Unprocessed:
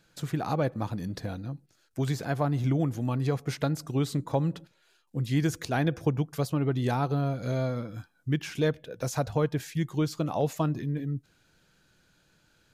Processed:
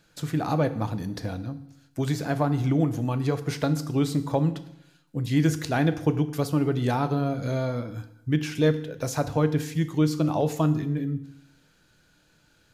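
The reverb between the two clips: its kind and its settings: FDN reverb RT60 0.79 s, low-frequency decay 1.05×, high-frequency decay 0.95×, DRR 9.5 dB; trim +2.5 dB

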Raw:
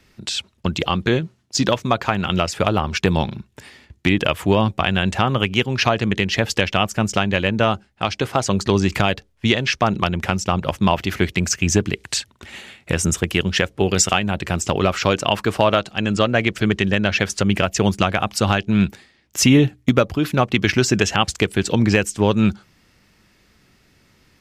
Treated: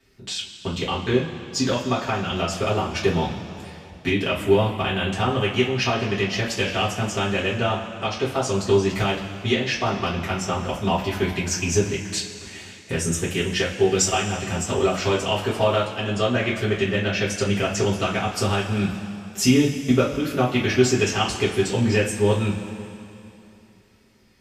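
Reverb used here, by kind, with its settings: two-slope reverb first 0.25 s, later 2.9 s, from -18 dB, DRR -8.5 dB; trim -13 dB

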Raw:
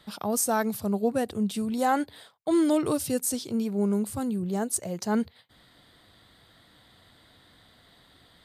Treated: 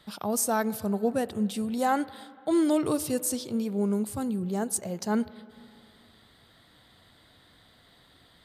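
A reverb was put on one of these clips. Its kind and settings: spring tank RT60 2.5 s, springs 38/46/56 ms, chirp 65 ms, DRR 17 dB; trim -1 dB

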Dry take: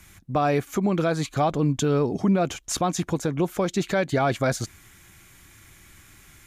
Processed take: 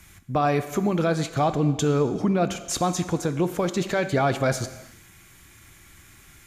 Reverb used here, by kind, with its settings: gated-style reverb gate 430 ms falling, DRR 10 dB

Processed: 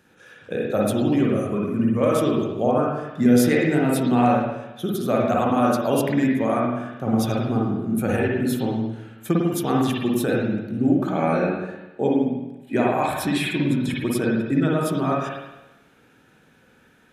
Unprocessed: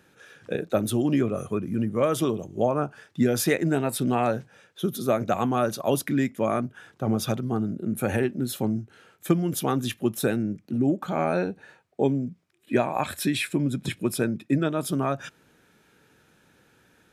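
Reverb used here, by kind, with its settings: spring tank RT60 1 s, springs 49/53 ms, chirp 65 ms, DRR -3.5 dB; trim -1 dB

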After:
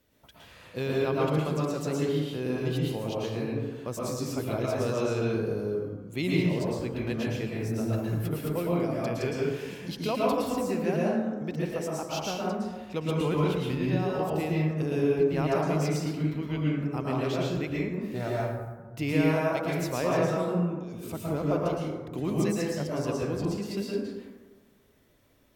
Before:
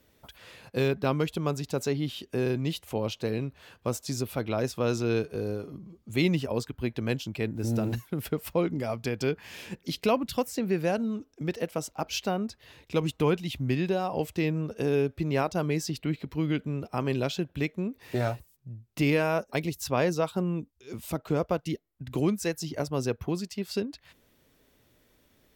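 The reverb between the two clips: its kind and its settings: plate-style reverb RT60 1.3 s, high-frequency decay 0.4×, pre-delay 100 ms, DRR -5 dB; trim -6 dB

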